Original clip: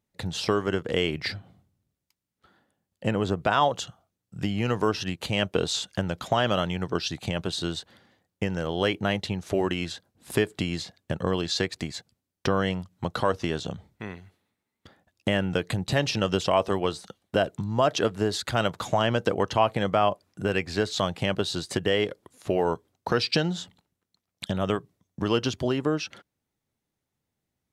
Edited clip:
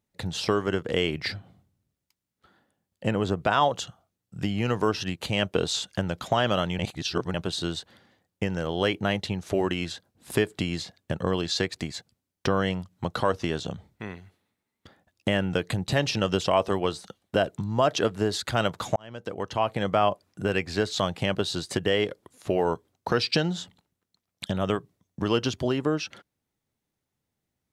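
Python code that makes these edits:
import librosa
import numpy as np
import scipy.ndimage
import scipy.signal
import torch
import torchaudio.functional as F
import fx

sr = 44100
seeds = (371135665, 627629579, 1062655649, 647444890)

y = fx.edit(x, sr, fx.reverse_span(start_s=6.79, length_s=0.55),
    fx.fade_in_span(start_s=18.96, length_s=1.0), tone=tone)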